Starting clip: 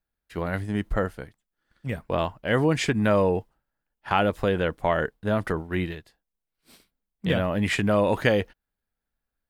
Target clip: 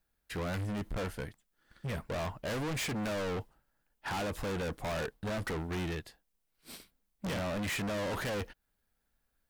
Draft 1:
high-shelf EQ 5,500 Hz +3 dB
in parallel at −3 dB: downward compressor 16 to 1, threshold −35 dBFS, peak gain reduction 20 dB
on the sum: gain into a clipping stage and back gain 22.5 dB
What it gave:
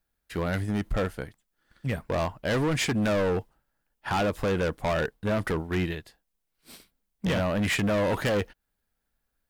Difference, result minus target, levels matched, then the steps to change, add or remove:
gain into a clipping stage and back: distortion −5 dB
change: gain into a clipping stage and back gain 33.5 dB

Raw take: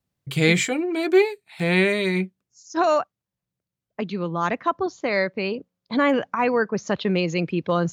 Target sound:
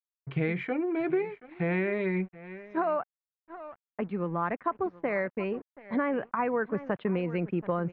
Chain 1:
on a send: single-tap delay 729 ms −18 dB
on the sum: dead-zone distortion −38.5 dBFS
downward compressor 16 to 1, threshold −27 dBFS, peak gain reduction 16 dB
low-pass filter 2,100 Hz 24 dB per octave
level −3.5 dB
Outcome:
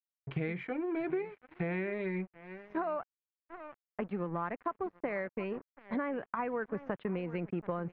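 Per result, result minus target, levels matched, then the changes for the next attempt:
downward compressor: peak gain reduction +6.5 dB; dead-zone distortion: distortion +8 dB
change: downward compressor 16 to 1, threshold −20 dBFS, peak gain reduction 9.5 dB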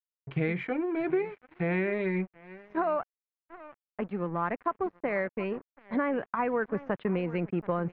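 dead-zone distortion: distortion +8 dB
change: dead-zone distortion −47 dBFS

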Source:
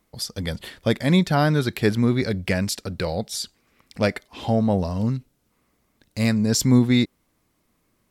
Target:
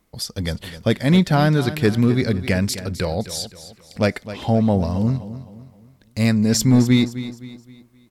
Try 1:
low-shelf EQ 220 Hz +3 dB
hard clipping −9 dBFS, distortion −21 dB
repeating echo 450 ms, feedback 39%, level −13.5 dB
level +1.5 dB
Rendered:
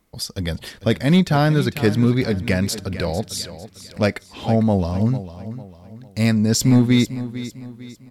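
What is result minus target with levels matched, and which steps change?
echo 191 ms late
change: repeating echo 259 ms, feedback 39%, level −13.5 dB

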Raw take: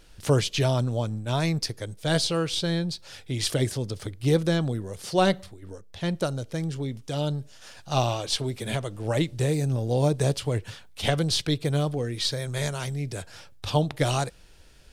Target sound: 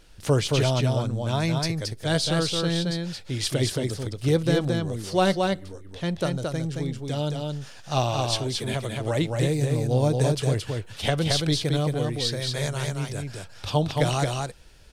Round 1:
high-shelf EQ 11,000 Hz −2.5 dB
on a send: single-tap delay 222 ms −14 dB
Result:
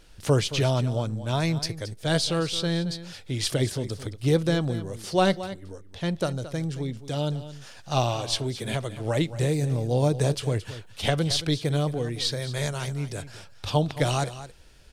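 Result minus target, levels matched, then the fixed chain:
echo-to-direct −10.5 dB
high-shelf EQ 11,000 Hz −2.5 dB
on a send: single-tap delay 222 ms −3.5 dB

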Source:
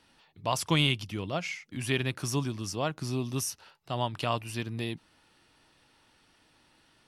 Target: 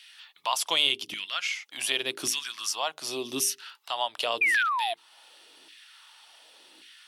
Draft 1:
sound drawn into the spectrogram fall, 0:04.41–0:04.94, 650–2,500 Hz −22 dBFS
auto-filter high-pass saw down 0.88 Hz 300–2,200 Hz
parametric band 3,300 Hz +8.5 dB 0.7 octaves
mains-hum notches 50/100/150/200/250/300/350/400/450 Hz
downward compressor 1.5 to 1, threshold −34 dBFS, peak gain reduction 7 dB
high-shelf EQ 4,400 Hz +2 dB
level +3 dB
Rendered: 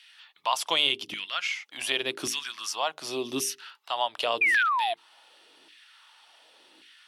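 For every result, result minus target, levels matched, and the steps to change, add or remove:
8,000 Hz band −4.0 dB; downward compressor: peak gain reduction −2.5 dB
change: high-shelf EQ 4,400 Hz +10.5 dB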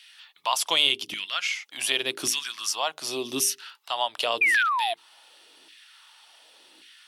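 downward compressor: peak gain reduction −2.5 dB
change: downward compressor 1.5 to 1, threshold −41.5 dBFS, peak gain reduction 9.5 dB

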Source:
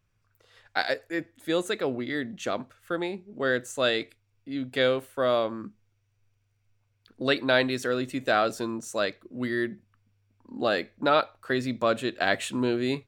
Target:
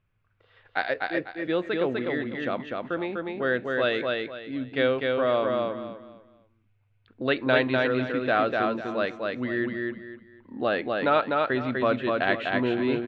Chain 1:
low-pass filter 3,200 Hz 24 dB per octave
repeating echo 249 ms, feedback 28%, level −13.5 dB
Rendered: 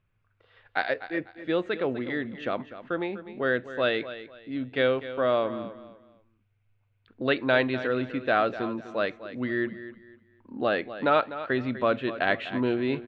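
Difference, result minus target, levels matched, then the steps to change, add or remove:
echo-to-direct −10.5 dB
change: repeating echo 249 ms, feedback 28%, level −3 dB

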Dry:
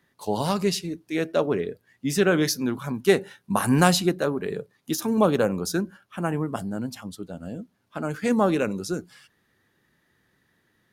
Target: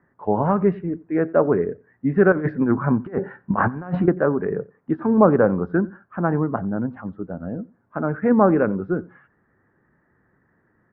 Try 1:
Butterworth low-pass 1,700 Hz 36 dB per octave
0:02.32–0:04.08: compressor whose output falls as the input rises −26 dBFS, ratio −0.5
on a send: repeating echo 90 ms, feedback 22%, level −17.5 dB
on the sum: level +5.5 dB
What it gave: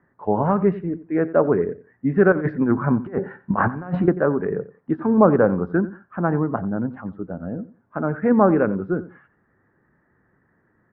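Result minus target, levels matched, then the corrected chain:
echo-to-direct +7 dB
Butterworth low-pass 1,700 Hz 36 dB per octave
0:02.32–0:04.08: compressor whose output falls as the input rises −26 dBFS, ratio −0.5
on a send: repeating echo 90 ms, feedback 22%, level −24.5 dB
on the sum: level +5.5 dB

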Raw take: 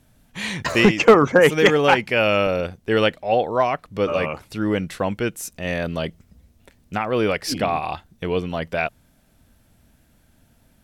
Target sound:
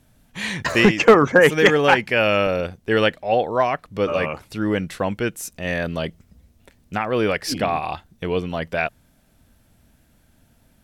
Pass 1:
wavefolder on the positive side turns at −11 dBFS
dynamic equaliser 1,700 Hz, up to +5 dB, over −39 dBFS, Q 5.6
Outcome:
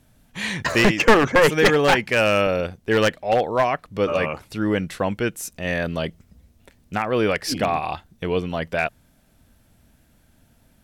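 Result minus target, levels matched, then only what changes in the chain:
wavefolder on the positive side: distortion +37 dB
change: wavefolder on the positive side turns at −3.5 dBFS

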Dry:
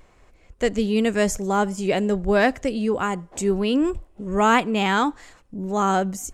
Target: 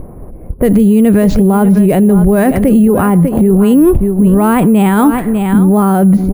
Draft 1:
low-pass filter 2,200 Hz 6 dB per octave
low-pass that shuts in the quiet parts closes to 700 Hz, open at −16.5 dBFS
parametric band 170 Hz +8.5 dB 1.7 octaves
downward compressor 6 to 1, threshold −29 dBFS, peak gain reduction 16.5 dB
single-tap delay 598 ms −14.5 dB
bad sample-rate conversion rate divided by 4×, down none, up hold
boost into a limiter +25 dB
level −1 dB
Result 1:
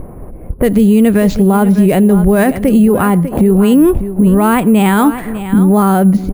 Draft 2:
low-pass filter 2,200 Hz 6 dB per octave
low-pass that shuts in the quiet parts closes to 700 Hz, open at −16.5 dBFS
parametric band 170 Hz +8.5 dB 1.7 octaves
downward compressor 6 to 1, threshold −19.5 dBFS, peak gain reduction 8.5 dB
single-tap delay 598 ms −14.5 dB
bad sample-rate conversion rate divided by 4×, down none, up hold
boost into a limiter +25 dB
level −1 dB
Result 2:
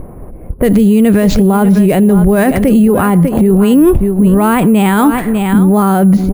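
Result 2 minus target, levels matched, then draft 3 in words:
2,000 Hz band +3.0 dB
low-pass filter 980 Hz 6 dB per octave
low-pass that shuts in the quiet parts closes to 700 Hz, open at −16.5 dBFS
parametric band 170 Hz +8.5 dB 1.7 octaves
downward compressor 6 to 1, threshold −19.5 dBFS, peak gain reduction 8.5 dB
single-tap delay 598 ms −14.5 dB
bad sample-rate conversion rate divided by 4×, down none, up hold
boost into a limiter +25 dB
level −1 dB

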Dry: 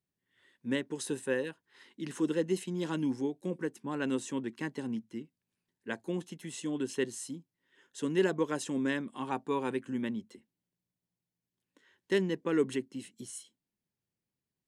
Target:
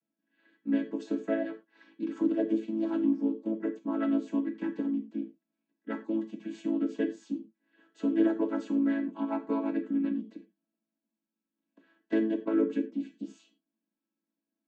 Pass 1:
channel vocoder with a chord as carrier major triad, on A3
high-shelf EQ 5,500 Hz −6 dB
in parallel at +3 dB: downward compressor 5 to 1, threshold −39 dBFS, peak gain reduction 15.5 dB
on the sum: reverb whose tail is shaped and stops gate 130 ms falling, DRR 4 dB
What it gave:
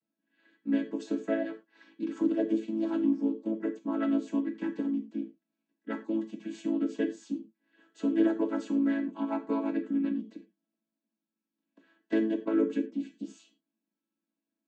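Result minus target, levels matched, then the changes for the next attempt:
8,000 Hz band +5.0 dB
change: high-shelf EQ 5,500 Hz −14.5 dB

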